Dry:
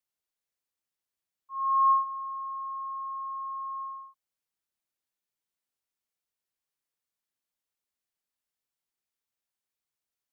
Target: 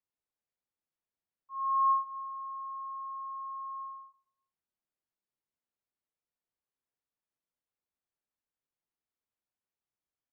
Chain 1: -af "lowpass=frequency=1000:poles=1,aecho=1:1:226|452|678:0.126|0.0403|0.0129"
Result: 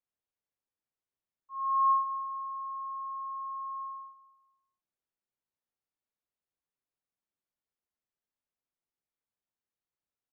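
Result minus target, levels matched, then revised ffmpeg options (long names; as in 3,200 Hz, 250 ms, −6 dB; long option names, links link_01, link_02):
echo 94 ms late
-af "lowpass=frequency=1000:poles=1,aecho=1:1:132|264|396:0.126|0.0403|0.0129"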